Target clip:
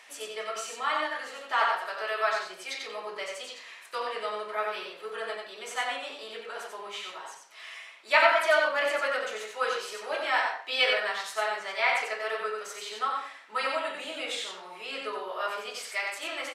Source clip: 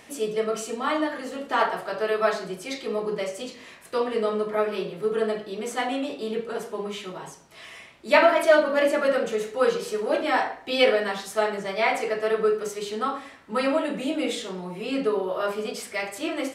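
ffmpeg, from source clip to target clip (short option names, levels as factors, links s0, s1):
-filter_complex "[0:a]highpass=1000,highshelf=f=8400:g=-9.5,asplit=2[s0][s1];[s1]aecho=0:1:91:0.631[s2];[s0][s2]amix=inputs=2:normalize=0"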